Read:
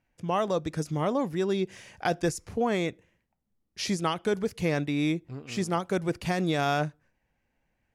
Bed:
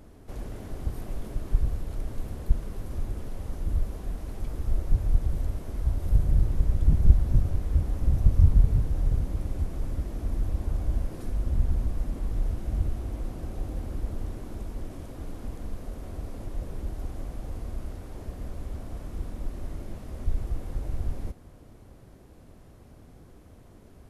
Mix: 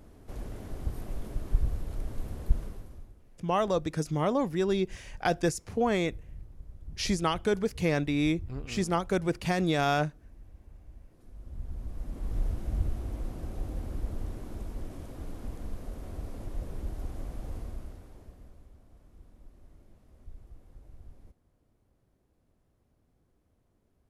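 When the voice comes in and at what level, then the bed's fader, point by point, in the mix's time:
3.20 s, 0.0 dB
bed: 0:02.64 −2.5 dB
0:03.19 −23 dB
0:11.10 −23 dB
0:12.37 −2.5 dB
0:17.57 −2.5 dB
0:18.76 −20 dB

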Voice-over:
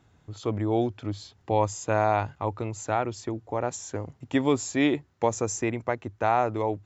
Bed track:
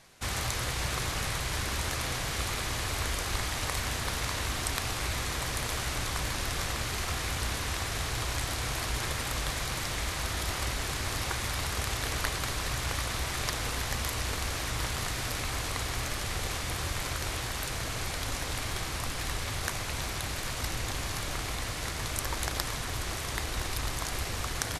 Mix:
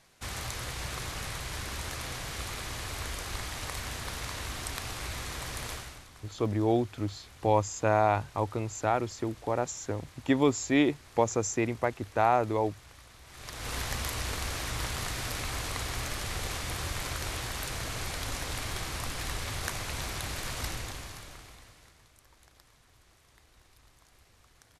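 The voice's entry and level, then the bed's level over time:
5.95 s, −1.0 dB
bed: 0:05.72 −5 dB
0:06.10 −21 dB
0:13.22 −21 dB
0:13.74 −1.5 dB
0:20.67 −1.5 dB
0:22.13 −28 dB

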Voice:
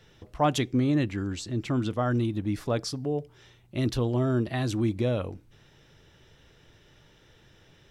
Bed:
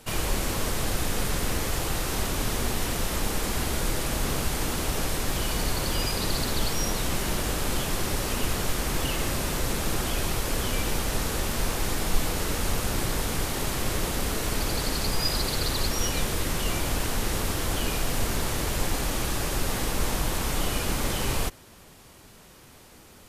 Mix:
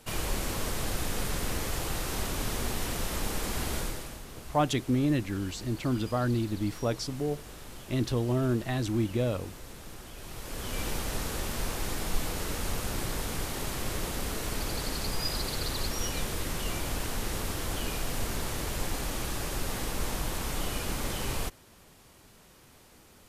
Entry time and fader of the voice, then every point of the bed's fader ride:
4.15 s, −2.0 dB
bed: 0:03.78 −4.5 dB
0:04.25 −18 dB
0:10.14 −18 dB
0:10.82 −5.5 dB

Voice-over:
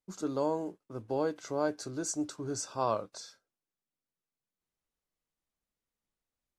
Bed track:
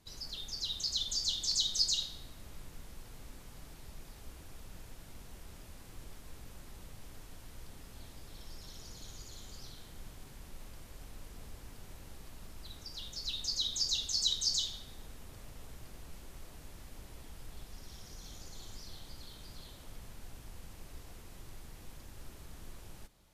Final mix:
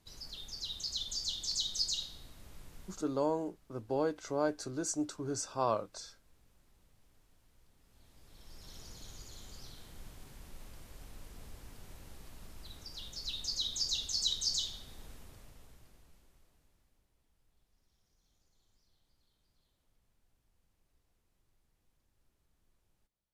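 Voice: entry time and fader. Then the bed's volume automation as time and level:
2.80 s, −1.0 dB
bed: 0:02.86 −3.5 dB
0:03.19 −17.5 dB
0:07.76 −17.5 dB
0:08.74 −1.5 dB
0:15.13 −1.5 dB
0:17.11 −26.5 dB

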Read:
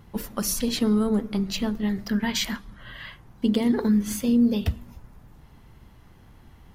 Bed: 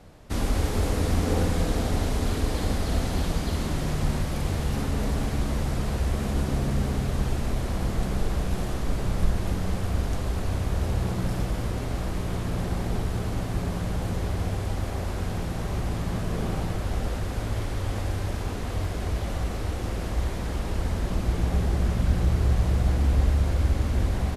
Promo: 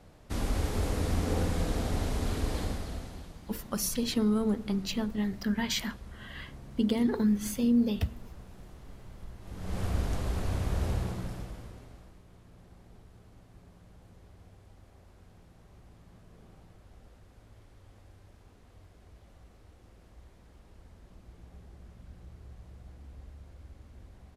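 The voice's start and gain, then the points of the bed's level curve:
3.35 s, −5.0 dB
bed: 0:02.59 −5.5 dB
0:03.39 −22.5 dB
0:09.38 −22.5 dB
0:09.80 −4 dB
0:10.91 −4 dB
0:12.23 −27 dB

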